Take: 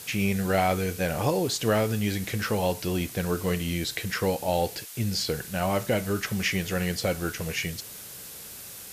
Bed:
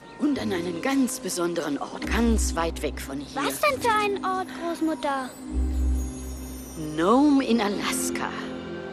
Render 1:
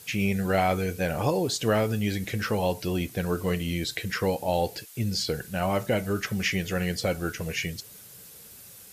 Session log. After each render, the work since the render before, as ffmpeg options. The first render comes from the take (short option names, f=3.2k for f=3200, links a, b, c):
-af "afftdn=nr=8:nf=-42"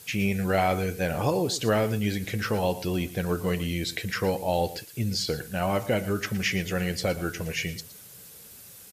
-af "aecho=1:1:115:0.168"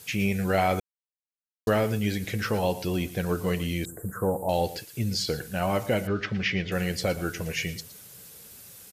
-filter_complex "[0:a]asettb=1/sr,asplit=3[a][b][c];[a]atrim=end=3.854[d];[b]atrim=start=3.85:end=4.49,asetpts=PTS-STARTPTS,afade=t=in:d=0.004:c=qsin,afade=t=out:st=0.636:d=0.004:c=qsin,asuperstop=centerf=3400:order=12:qfactor=0.54[e];[c]atrim=start=4.486[f];[d][e]acrossfade=d=0.004:c1=hsin:c2=qsin[g];[g][f]acrossfade=d=0.004:c1=qsin:c2=hsin,asettb=1/sr,asplit=3[h][i][j];[h]atrim=end=6.074[k];[i]atrim=start=6.07:end=6.72,asetpts=PTS-STARTPTS,afade=t=in:d=0.004:c=qsin,afade=t=out:st=0.646:d=0.004:c=qsin,lowpass=f=4.5k:w=0.5412,lowpass=f=4.5k:w=1.3066[l];[j]atrim=start=6.716[m];[k][l]acrossfade=d=0.004:c1=hsin:c2=qsin[n];[n][m]acrossfade=d=0.004:c1=qsin:c2=hsin,asplit=3[o][p][q];[o]atrim=end=0.8,asetpts=PTS-STARTPTS,afade=t=out:st=0.796:d=0.004:c=hsin[r];[p]atrim=start=0.8:end=1.67,asetpts=PTS-STARTPTS,volume=0[s];[q]atrim=start=1.67,asetpts=PTS-STARTPTS,afade=t=in:d=0.004:c=hsin[t];[r][s][t]concat=n=3:v=0:a=1"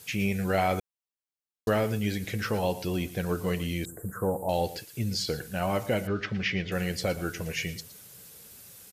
-af "volume=-2dB"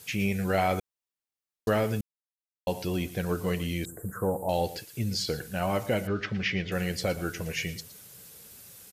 -filter_complex "[0:a]asplit=3[a][b][c];[a]atrim=end=2.01,asetpts=PTS-STARTPTS,afade=t=out:st=2.006:d=0.004:c=hsin[d];[b]atrim=start=2.01:end=2.67,asetpts=PTS-STARTPTS,volume=0[e];[c]atrim=start=2.67,asetpts=PTS-STARTPTS,afade=t=in:d=0.004:c=hsin[f];[d][e][f]concat=n=3:v=0:a=1"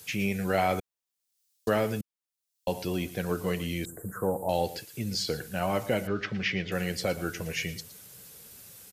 -filter_complex "[0:a]acrossover=split=150|3600[a][b][c];[a]alimiter=level_in=11.5dB:limit=-24dB:level=0:latency=1:release=400,volume=-11.5dB[d];[c]acompressor=mode=upward:threshold=-56dB:ratio=2.5[e];[d][b][e]amix=inputs=3:normalize=0"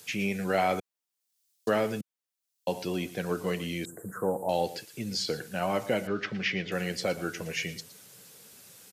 -filter_complex "[0:a]acrossover=split=9700[a][b];[b]acompressor=threshold=-56dB:ratio=4:attack=1:release=60[c];[a][c]amix=inputs=2:normalize=0,highpass=150"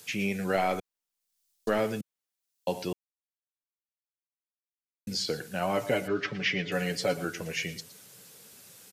-filter_complex "[0:a]asettb=1/sr,asplit=3[a][b][c];[a]atrim=end=0.564[d];[b]atrim=start=0.56:end=1.79,asetpts=PTS-STARTPTS,afade=t=in:d=0.004:c=qsin,afade=t=out:st=1.226:d=0.004:c=qsin,aeval=exprs='if(lt(val(0),0),0.708*val(0),val(0))':c=same[e];[c]atrim=start=1.786[f];[d][e]acrossfade=d=0.004:c1=hsin:c2=qsin[g];[g][f]acrossfade=d=0.004:c1=qsin:c2=hsin,asettb=1/sr,asplit=3[h][i][j];[h]atrim=end=5.774[k];[i]atrim=start=5.77:end=7.25,asetpts=PTS-STARTPTS,afade=t=in:d=0.004:c=qsin,afade=t=out:st=1.476:d=0.004:c=qsin,aecho=1:1:7:0.65,atrim=end_sample=65268[l];[j]atrim=start=7.246[m];[k][l]acrossfade=d=0.004:c1=hsin:c2=qsin[n];[n][m]acrossfade=d=0.004:c1=qsin:c2=hsin,asplit=3[o][p][q];[o]atrim=end=2.93,asetpts=PTS-STARTPTS,afade=t=out:st=2.926:d=0.004:c=hsin[r];[p]atrim=start=2.93:end=5.07,asetpts=PTS-STARTPTS,volume=0[s];[q]atrim=start=5.07,asetpts=PTS-STARTPTS,afade=t=in:d=0.004:c=hsin[t];[r][s][t]concat=n=3:v=0:a=1"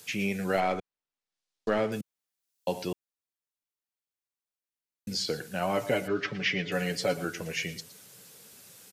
-filter_complex "[0:a]asettb=1/sr,asplit=3[a][b][c];[a]atrim=end=0.604[d];[b]atrim=start=0.6:end=1.92,asetpts=PTS-STARTPTS,afade=t=in:d=0.004:c=qsin,afade=t=out:st=1.316:d=0.004:c=qsin,adynamicsmooth=sensitivity=5:basefreq=4k[e];[c]atrim=start=1.916[f];[d][e]acrossfade=d=0.004:c1=hsin:c2=qsin[g];[g][f]acrossfade=d=0.004:c1=qsin:c2=hsin"